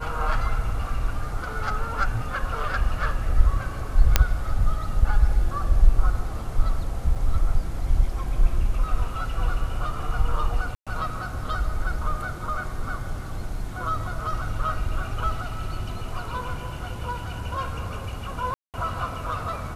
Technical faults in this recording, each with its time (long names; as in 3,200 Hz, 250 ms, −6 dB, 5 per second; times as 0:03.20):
0:04.16: click 0 dBFS
0:07.15–0:07.16: drop-out 5.9 ms
0:10.75–0:10.87: drop-out 116 ms
0:18.54–0:18.74: drop-out 198 ms